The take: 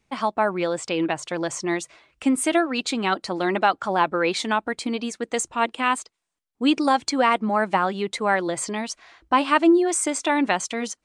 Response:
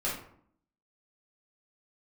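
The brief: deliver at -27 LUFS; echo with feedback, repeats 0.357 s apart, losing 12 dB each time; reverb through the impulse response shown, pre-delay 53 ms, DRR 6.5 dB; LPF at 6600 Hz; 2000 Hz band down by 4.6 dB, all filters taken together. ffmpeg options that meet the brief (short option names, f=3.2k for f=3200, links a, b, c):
-filter_complex "[0:a]lowpass=6.6k,equalizer=f=2k:t=o:g=-6,aecho=1:1:357|714|1071:0.251|0.0628|0.0157,asplit=2[a][b];[1:a]atrim=start_sample=2205,adelay=53[c];[b][c]afir=irnorm=-1:irlink=0,volume=-13dB[d];[a][d]amix=inputs=2:normalize=0,volume=-4.5dB"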